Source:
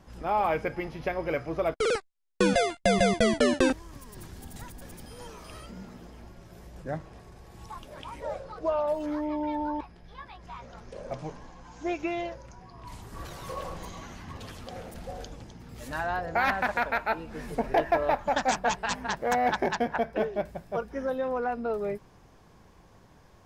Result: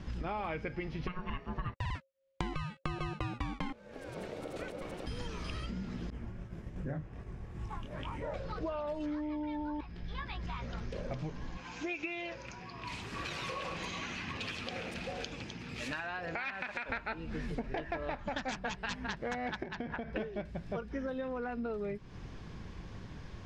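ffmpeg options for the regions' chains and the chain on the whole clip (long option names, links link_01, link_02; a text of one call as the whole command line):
ffmpeg -i in.wav -filter_complex "[0:a]asettb=1/sr,asplit=3[link_01][link_02][link_03];[link_01]atrim=end=1.074[link_04];[link_02]atrim=start=1.07:end=5.07,asetpts=PTS-STARTPTS,afade=type=in:duration=0.004:curve=qsin,afade=type=out:start_time=3.996:duration=0.004:curve=qsin,equalizer=frequency=5400:width=0.79:gain=-7,aeval=exprs='val(0)*sin(2*PI*540*n/s)':channel_layout=same[link_05];[link_03]atrim=start=5.066[link_06];[link_04][link_05]acrossfade=duration=0.004:curve1=hsin:curve2=qsin[link_07];[link_07][link_06]acrossfade=duration=0.004:curve1=qsin:curve2=hsin,asettb=1/sr,asplit=3[link_08][link_09][link_10];[link_08]atrim=end=6.104[link_11];[link_09]atrim=start=6.1:end=8.34,asetpts=PTS-STARTPTS,afade=type=in:duration=0.004:curve=qsin,afade=type=out:start_time=2.236:duration=0.004:curve=qsin,flanger=delay=20:depth=6.8:speed=2.6,agate=range=-33dB:threshold=-50dB:ratio=3:release=100:detection=peak,equalizer=frequency=4300:width_type=o:width=1.2:gain=-12.5[link_12];[link_10]atrim=start=8.336[link_13];[link_11][link_12]acrossfade=duration=0.004:curve1=hsin:curve2=qsin[link_14];[link_14][link_13]acrossfade=duration=0.004:curve1=qsin:curve2=hsin,asettb=1/sr,asplit=3[link_15][link_16][link_17];[link_15]atrim=end=11.574[link_18];[link_16]atrim=start=11.57:end=16.89,asetpts=PTS-STARTPTS,afade=type=in:duration=0.004:curve=qsin,afade=type=out:start_time=5.316:duration=0.004:curve=qsin,highpass=frequency=450:poles=1,acompressor=threshold=-35dB:ratio=2.5:attack=3.2:release=140:knee=1:detection=peak,equalizer=frequency=2500:width=6.2:gain=9.5[link_19];[link_17]atrim=start=16.886[link_20];[link_18][link_19]acrossfade=duration=0.004:curve1=hsin:curve2=qsin[link_21];[link_21][link_20]acrossfade=duration=0.004:curve1=qsin:curve2=hsin,asettb=1/sr,asplit=3[link_22][link_23][link_24];[link_22]atrim=end=19.634[link_25];[link_23]atrim=start=19.63:end=20.16,asetpts=PTS-STARTPTS,afade=type=in:duration=0.004:curve=qsin,afade=type=out:start_time=0.526:duration=0.004:curve=qsin,highshelf=frequency=6000:gain=-10.5,acompressor=threshold=-30dB:ratio=12:attack=3.2:release=140:knee=1:detection=peak[link_26];[link_24]atrim=start=20.156[link_27];[link_25][link_26]acrossfade=duration=0.004:curve1=hsin:curve2=qsin[link_28];[link_28][link_27]acrossfade=duration=0.004:curve1=qsin:curve2=hsin,lowpass=3900,equalizer=frequency=750:width_type=o:width=2:gain=-11.5,acompressor=threshold=-48dB:ratio=6,volume=12.5dB" out.wav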